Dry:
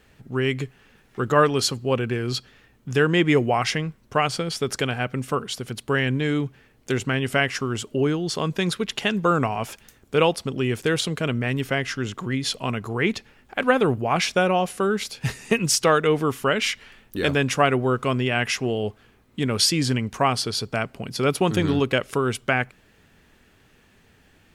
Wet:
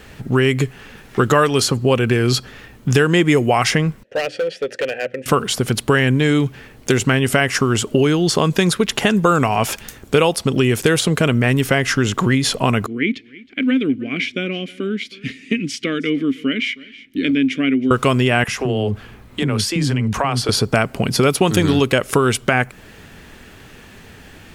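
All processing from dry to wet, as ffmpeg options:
-filter_complex "[0:a]asettb=1/sr,asplit=3[s0][s1][s2];[s0]atrim=end=4.034[s3];[s1]atrim=start=4.03:end=5.26,asetpts=PTS-STARTPTS,afade=t=in:d=0.004:c=qsin,afade=t=out:st=1.226:d=0.004:c=qsin,asplit=3[s4][s5][s6];[s4]bandpass=f=530:t=q:w=8,volume=1[s7];[s5]bandpass=f=1840:t=q:w=8,volume=0.501[s8];[s6]bandpass=f=2480:t=q:w=8,volume=0.355[s9];[s7][s8][s9]amix=inputs=3:normalize=0,bandreject=f=60:t=h:w=6,bandreject=f=120:t=h:w=6,bandreject=f=180:t=h:w=6,bandreject=f=240:t=h:w=6,bandreject=f=300:t=h:w=6,bandreject=f=360:t=h:w=6,asoftclip=type=hard:threshold=0.0266[s10];[s2]atrim=start=5.256[s11];[s3][s10]acrossfade=d=0.004:c1=hsin:c2=qsin[s12];[s12][s11]acrossfade=d=0.004:c1=qsin:c2=hsin,asettb=1/sr,asplit=3[s13][s14][s15];[s13]atrim=end=12.864[s16];[s14]atrim=start=12.86:end=17.91,asetpts=PTS-STARTPTS,afade=t=in:d=0.004:c=qsin,afade=t=out:st=5.046:d=0.004:c=qsin,asplit=3[s17][s18][s19];[s17]bandpass=f=270:t=q:w=8,volume=1[s20];[s18]bandpass=f=2290:t=q:w=8,volume=0.501[s21];[s19]bandpass=f=3010:t=q:w=8,volume=0.355[s22];[s20][s21][s22]amix=inputs=3:normalize=0,aecho=1:1:317:0.075,atrim=end_sample=222705[s23];[s15]atrim=start=17.906[s24];[s16][s23]acrossfade=d=0.004:c1=hsin:c2=qsin[s25];[s25][s24]acrossfade=d=0.004:c1=qsin:c2=hsin,asettb=1/sr,asplit=3[s26][s27][s28];[s26]atrim=end=18.444[s29];[s27]atrim=start=18.44:end=20.49,asetpts=PTS-STARTPTS,afade=t=in:d=0.004:c=qsin,afade=t=out:st=2.046:d=0.004:c=qsin,bass=f=250:g=3,treble=f=4000:g=-3,acrossover=split=330[s30][s31];[s30]adelay=40[s32];[s32][s31]amix=inputs=2:normalize=0,atrim=end_sample=90405,acompressor=threshold=0.0224:ratio=3:attack=3.2:release=140:knee=1:detection=peak[s33];[s28]atrim=start=20.486[s34];[s29][s33]acrossfade=d=0.004:c1=hsin:c2=qsin[s35];[s35][s34]acrossfade=d=0.004:c1=qsin:c2=hsin,acrossover=split=2100|6200[s36][s37][s38];[s36]acompressor=threshold=0.0355:ratio=4[s39];[s37]acompressor=threshold=0.00794:ratio=4[s40];[s38]acompressor=threshold=0.0112:ratio=4[s41];[s39][s40][s41]amix=inputs=3:normalize=0,alimiter=level_in=7.08:limit=0.891:release=50:level=0:latency=1,volume=0.841"

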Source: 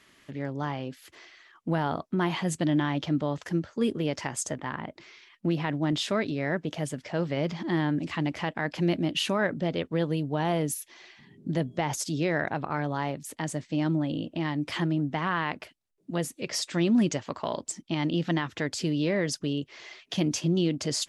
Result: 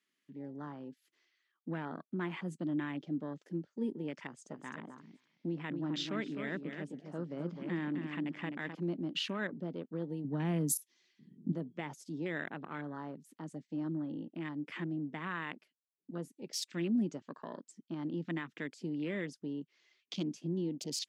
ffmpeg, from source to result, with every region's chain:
-filter_complex "[0:a]asettb=1/sr,asplit=3[s0][s1][s2];[s0]atrim=end=4.244[s3];[s1]atrim=start=4.24:end=8.75,asetpts=PTS-STARTPTS,afade=t=in:d=0.004:c=qsin,afade=t=out:st=4.506:d=0.004:c=qsin,lowpass=7800,aecho=1:1:258|516|774:0.501|0.135|0.0365,atrim=end_sample=198891[s4];[s2]atrim=start=8.746[s5];[s3][s4]acrossfade=d=0.004:c1=hsin:c2=qsin[s6];[s6][s5]acrossfade=d=0.004:c1=qsin:c2=hsin,asettb=1/sr,asplit=3[s7][s8][s9];[s7]atrim=end=10.244[s10];[s8]atrim=start=10.24:end=11.52,asetpts=PTS-STARTPTS,afade=t=in:d=0.004:c=qsin,afade=t=out:st=1.276:d=0.004:c=qsin,highpass=150,bass=f=250:g=15,treble=f=4000:g=9[s11];[s9]atrim=start=11.516[s12];[s10][s11]acrossfade=d=0.004:c1=hsin:c2=qsin[s13];[s13][s12]acrossfade=d=0.004:c1=qsin:c2=hsin,afwtdn=0.0158,highpass=f=180:w=0.5412,highpass=f=180:w=1.3066,equalizer=f=720:t=o:w=1.4:g=-10,volume=0.473"

